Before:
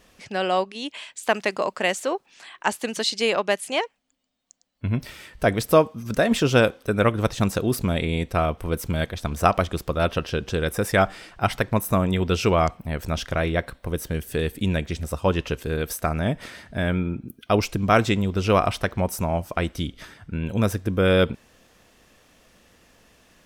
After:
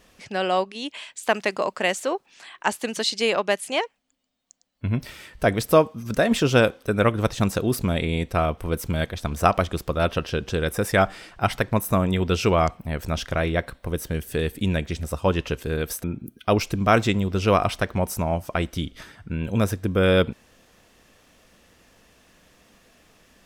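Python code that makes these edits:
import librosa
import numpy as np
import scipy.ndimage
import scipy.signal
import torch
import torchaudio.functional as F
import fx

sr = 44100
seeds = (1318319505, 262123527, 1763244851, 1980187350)

y = fx.edit(x, sr, fx.cut(start_s=16.04, length_s=1.02), tone=tone)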